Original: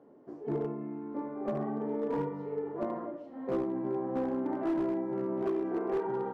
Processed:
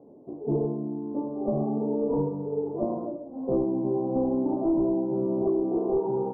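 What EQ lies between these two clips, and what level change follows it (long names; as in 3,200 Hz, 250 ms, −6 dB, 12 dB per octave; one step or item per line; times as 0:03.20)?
inverse Chebyshev low-pass filter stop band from 1,700 Hz, stop band 40 dB
low-shelf EQ 120 Hz +8.5 dB
+5.5 dB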